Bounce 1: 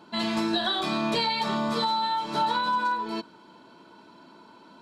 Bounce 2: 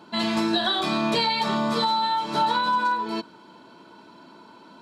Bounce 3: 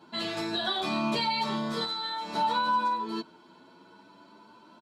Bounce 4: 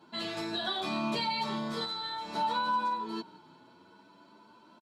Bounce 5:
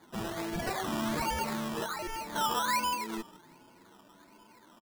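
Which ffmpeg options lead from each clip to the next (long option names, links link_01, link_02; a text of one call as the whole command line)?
ffmpeg -i in.wav -af "highpass=41,volume=3dB" out.wav
ffmpeg -i in.wav -filter_complex "[0:a]asplit=2[link_01][link_02];[link_02]adelay=9.2,afreqshift=0.59[link_03];[link_01][link_03]amix=inputs=2:normalize=1,volume=-3dB" out.wav
ffmpeg -i in.wav -filter_complex "[0:a]asplit=5[link_01][link_02][link_03][link_04][link_05];[link_02]adelay=175,afreqshift=-32,volume=-22dB[link_06];[link_03]adelay=350,afreqshift=-64,volume=-27.4dB[link_07];[link_04]adelay=525,afreqshift=-96,volume=-32.7dB[link_08];[link_05]adelay=700,afreqshift=-128,volume=-38.1dB[link_09];[link_01][link_06][link_07][link_08][link_09]amix=inputs=5:normalize=0,volume=-3.5dB" out.wav
ffmpeg -i in.wav -af "acrusher=samples=16:mix=1:aa=0.000001:lfo=1:lforange=9.6:lforate=1.3" out.wav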